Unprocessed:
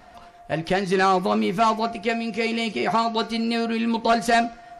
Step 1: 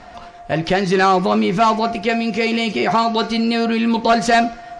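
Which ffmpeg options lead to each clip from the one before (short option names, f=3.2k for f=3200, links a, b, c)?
-filter_complex "[0:a]lowpass=f=7.8k:w=0.5412,lowpass=f=7.8k:w=1.3066,asplit=2[a][b];[b]alimiter=limit=-22dB:level=0:latency=1:release=25,volume=1.5dB[c];[a][c]amix=inputs=2:normalize=0,volume=2dB"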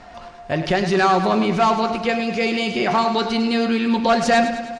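-af "aecho=1:1:103|206|309|412|515|618|721:0.316|0.187|0.11|0.0649|0.0383|0.0226|0.0133,volume=-2.5dB"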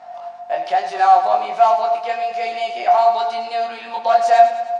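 -af "flanger=delay=22.5:depth=2.8:speed=1.2,aeval=exprs='val(0)+0.0251*(sin(2*PI*50*n/s)+sin(2*PI*2*50*n/s)/2+sin(2*PI*3*50*n/s)/3+sin(2*PI*4*50*n/s)/4+sin(2*PI*5*50*n/s)/5)':c=same,highpass=f=720:t=q:w=6.6,volume=-4dB"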